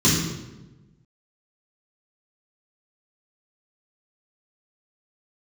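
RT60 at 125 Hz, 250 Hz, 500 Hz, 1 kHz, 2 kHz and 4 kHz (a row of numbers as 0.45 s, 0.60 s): 1.5 s, 1.4 s, 1.2 s, 0.95 s, 0.85 s, 0.75 s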